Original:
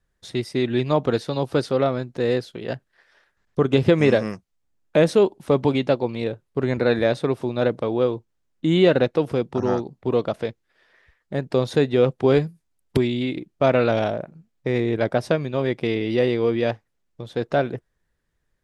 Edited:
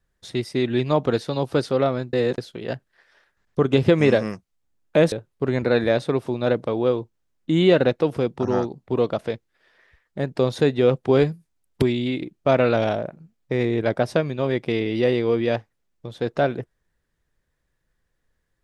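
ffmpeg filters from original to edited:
ffmpeg -i in.wav -filter_complex "[0:a]asplit=4[link_01][link_02][link_03][link_04];[link_01]atrim=end=2.132[link_05];[link_02]atrim=start=2.128:end=2.382,asetpts=PTS-STARTPTS,areverse[link_06];[link_03]atrim=start=2.378:end=5.122[link_07];[link_04]atrim=start=6.268[link_08];[link_05][link_06]acrossfade=duration=0.004:curve1=hsin:curve2=hsin[link_09];[link_09][link_07]acrossfade=duration=0.004:curve1=hsin:curve2=hsin[link_10];[link_10][link_08]acrossfade=duration=0.004:curve1=hsin:curve2=hsin" out.wav

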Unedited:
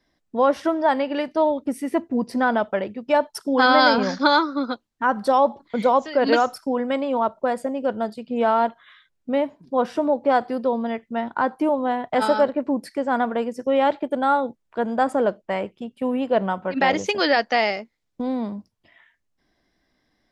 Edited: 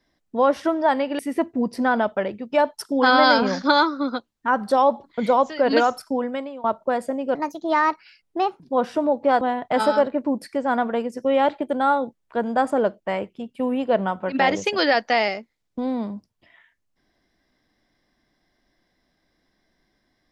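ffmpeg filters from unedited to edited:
ffmpeg -i in.wav -filter_complex "[0:a]asplit=6[link_01][link_02][link_03][link_04][link_05][link_06];[link_01]atrim=end=1.192[link_07];[link_02]atrim=start=1.748:end=7.2,asetpts=PTS-STARTPTS,afade=type=out:start_time=4.952:duration=0.5:silence=0.0841395[link_08];[link_03]atrim=start=7.2:end=7.914,asetpts=PTS-STARTPTS,afade=type=in:duration=0.004:curve=hsin:silence=0.0841395[link_09];[link_04]atrim=start=7.91:end=9.61,asetpts=PTS-STARTPTS,asetrate=59976,aresample=44100[link_10];[link_05]atrim=start=9.606:end=10.422[link_11];[link_06]atrim=start=11.828[link_12];[link_08][link_09]concat=n=2:v=0:a=1[link_13];[link_07][link_13]acrossfade=duration=0.004:curve1=hsin:curve2=hsin[link_14];[link_14][link_10]acrossfade=duration=0.004:curve1=hsin:curve2=hsin[link_15];[link_15][link_11]acrossfade=duration=0.004:curve1=hsin:curve2=hsin[link_16];[link_16][link_12]acrossfade=duration=0.004:curve1=hsin:curve2=hsin" out.wav

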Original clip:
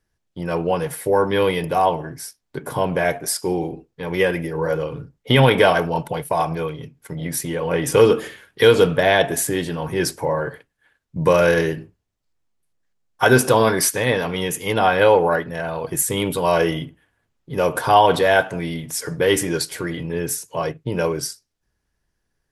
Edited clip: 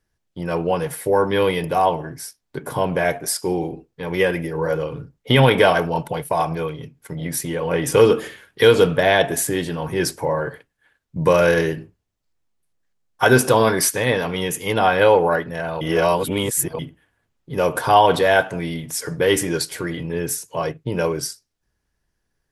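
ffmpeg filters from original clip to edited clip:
ffmpeg -i in.wav -filter_complex "[0:a]asplit=3[link_01][link_02][link_03];[link_01]atrim=end=15.812[link_04];[link_02]atrim=start=15.808:end=16.792,asetpts=PTS-STARTPTS,areverse[link_05];[link_03]atrim=start=16.788[link_06];[link_04][link_05]acrossfade=duration=0.004:curve1=hsin:curve2=hsin[link_07];[link_07][link_06]acrossfade=duration=0.004:curve1=hsin:curve2=hsin" out.wav

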